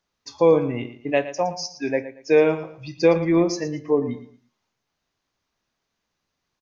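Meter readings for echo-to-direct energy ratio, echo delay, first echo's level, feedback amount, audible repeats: −13.0 dB, 114 ms, −13.5 dB, 27%, 2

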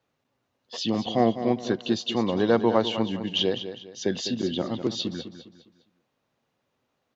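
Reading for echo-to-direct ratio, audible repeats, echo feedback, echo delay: −10.5 dB, 3, 36%, 203 ms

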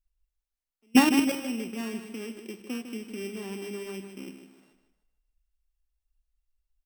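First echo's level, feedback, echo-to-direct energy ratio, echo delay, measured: −9.5 dB, 39%, −9.0 dB, 153 ms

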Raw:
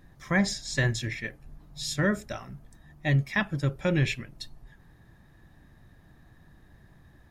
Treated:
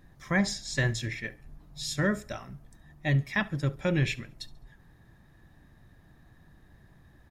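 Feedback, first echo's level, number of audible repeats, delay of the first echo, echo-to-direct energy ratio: 37%, −22.0 dB, 2, 69 ms, −21.5 dB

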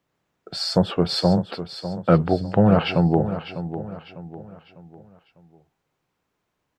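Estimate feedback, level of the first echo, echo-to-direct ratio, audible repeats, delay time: 40%, −11.5 dB, −11.0 dB, 3, 600 ms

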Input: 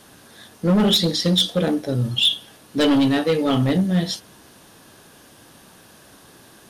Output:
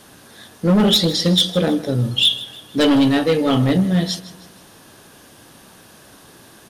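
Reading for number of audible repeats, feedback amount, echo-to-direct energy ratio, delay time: 3, 42%, −16.0 dB, 157 ms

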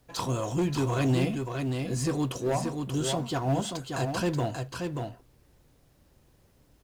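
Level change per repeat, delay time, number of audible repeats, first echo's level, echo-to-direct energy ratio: repeats not evenly spaced, 582 ms, 1, −5.0 dB, −5.0 dB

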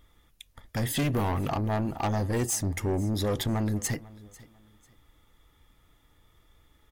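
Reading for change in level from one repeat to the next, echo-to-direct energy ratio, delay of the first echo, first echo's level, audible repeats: −11.0 dB, −20.5 dB, 495 ms, −21.0 dB, 2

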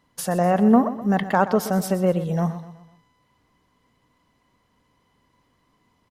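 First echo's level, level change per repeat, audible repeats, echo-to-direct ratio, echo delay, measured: −13.5 dB, −7.0 dB, 4, −12.5 dB, 125 ms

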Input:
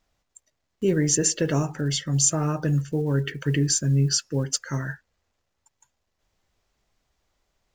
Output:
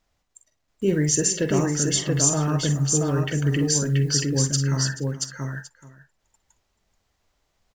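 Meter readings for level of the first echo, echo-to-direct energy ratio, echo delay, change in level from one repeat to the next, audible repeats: −9.0 dB, −1.5 dB, 46 ms, repeats not evenly spaced, 7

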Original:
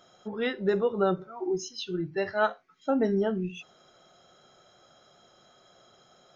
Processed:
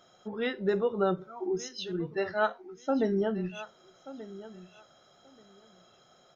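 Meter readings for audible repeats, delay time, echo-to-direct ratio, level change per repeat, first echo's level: 2, 1,182 ms, −16.0 dB, −15.5 dB, −16.0 dB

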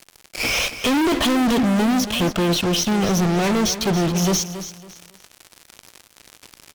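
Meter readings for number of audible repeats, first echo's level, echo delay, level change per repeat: 3, −12.0 dB, 278 ms, −11.5 dB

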